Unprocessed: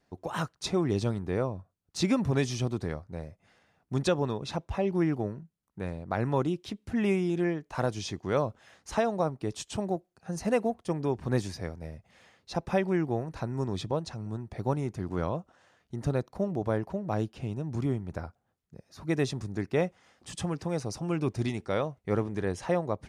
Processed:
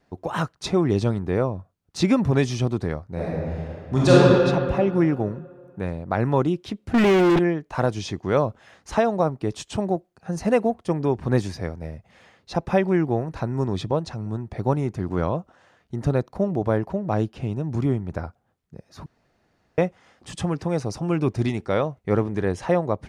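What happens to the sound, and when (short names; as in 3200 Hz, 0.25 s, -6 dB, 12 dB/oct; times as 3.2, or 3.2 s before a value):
3.12–4.13 reverb throw, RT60 2.4 s, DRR -8.5 dB
6.94–7.39 overdrive pedal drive 41 dB, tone 1900 Hz, clips at -17.5 dBFS
19.06–19.78 room tone
whole clip: high shelf 4100 Hz -7 dB; gain +7 dB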